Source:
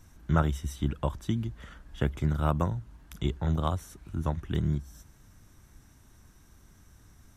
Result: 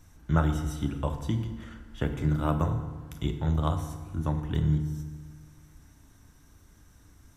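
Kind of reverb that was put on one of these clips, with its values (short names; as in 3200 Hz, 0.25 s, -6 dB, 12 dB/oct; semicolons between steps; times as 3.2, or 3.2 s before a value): FDN reverb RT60 1.4 s, low-frequency decay 1.2×, high-frequency decay 0.7×, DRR 5.5 dB; gain -1 dB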